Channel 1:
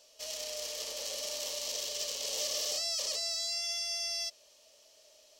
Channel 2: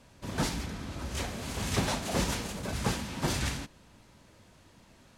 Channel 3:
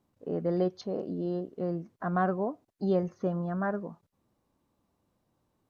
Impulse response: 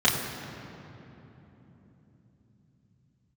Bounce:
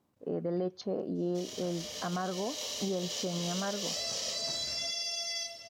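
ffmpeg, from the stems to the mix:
-filter_complex "[0:a]dynaudnorm=f=520:g=3:m=5dB,adelay=1150,volume=-12dB,asplit=2[a][b];[b]volume=-7dB[c];[1:a]adelay=1250,volume=-9dB[d];[2:a]volume=1dB,asplit=2[e][f];[f]apad=whole_len=283305[g];[d][g]sidechaincompress=threshold=-37dB:ratio=8:attack=16:release=634[h];[a][h]amix=inputs=2:normalize=0,acompressor=threshold=-43dB:ratio=6,volume=0dB[i];[3:a]atrim=start_sample=2205[j];[c][j]afir=irnorm=-1:irlink=0[k];[e][i][k]amix=inputs=3:normalize=0,lowshelf=f=71:g=-12,alimiter=limit=-24dB:level=0:latency=1:release=134"

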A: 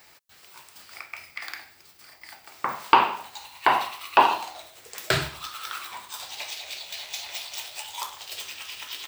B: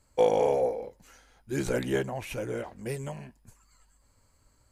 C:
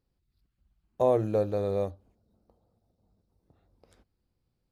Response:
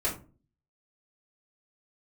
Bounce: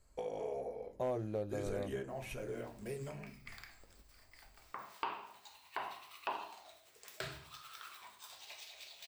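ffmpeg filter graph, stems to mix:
-filter_complex "[0:a]adelay=2100,volume=-17dB,asplit=2[a][b];[b]volume=-16dB[c];[1:a]acompressor=threshold=-27dB:ratio=6,volume=-8.5dB,asplit=2[d][e];[e]volume=-8.5dB[f];[2:a]bandreject=f=480:w=12,asoftclip=type=hard:threshold=-17.5dB,volume=-4dB[g];[3:a]atrim=start_sample=2205[h];[c][f]amix=inputs=2:normalize=0[i];[i][h]afir=irnorm=-1:irlink=0[j];[a][d][g][j]amix=inputs=4:normalize=0,acompressor=threshold=-47dB:ratio=1.5"

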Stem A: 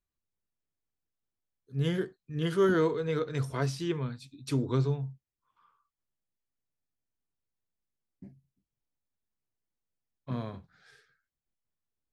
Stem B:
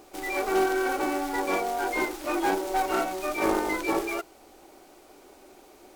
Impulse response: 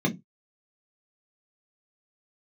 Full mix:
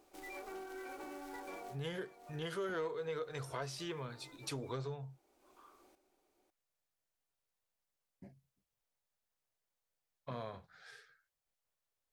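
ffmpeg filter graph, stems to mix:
-filter_complex "[0:a]asoftclip=type=tanh:threshold=-19dB,lowshelf=f=400:t=q:w=1.5:g=-8.5,volume=3dB,asplit=2[a][b];[1:a]acompressor=threshold=-28dB:ratio=6,volume=-15.5dB,asplit=2[c][d];[d]volume=-10dB[e];[b]apad=whole_len=262441[f];[c][f]sidechaincompress=threshold=-58dB:ratio=8:attack=16:release=314[g];[e]aecho=0:1:551:1[h];[a][g][h]amix=inputs=3:normalize=0,acompressor=threshold=-42dB:ratio=2.5"

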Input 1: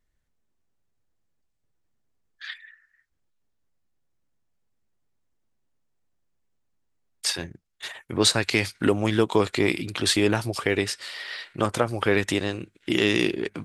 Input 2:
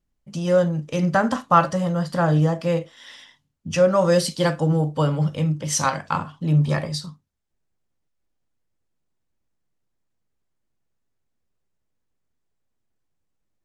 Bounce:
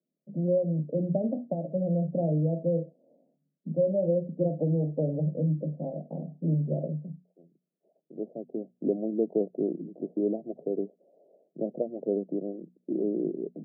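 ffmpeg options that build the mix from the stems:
-filter_complex "[0:a]volume=-5dB[a];[1:a]acompressor=threshold=-21dB:ratio=6,volume=-0.5dB,asplit=2[b][c];[c]apad=whole_len=601903[d];[a][d]sidechaincompress=threshold=-45dB:ratio=12:attack=38:release=1310[e];[e][b]amix=inputs=2:normalize=0,asuperpass=centerf=320:order=20:qfactor=0.6,bandreject=f=60:t=h:w=6,bandreject=f=120:t=h:w=6,bandreject=f=180:t=h:w=6,bandreject=f=240:t=h:w=6"

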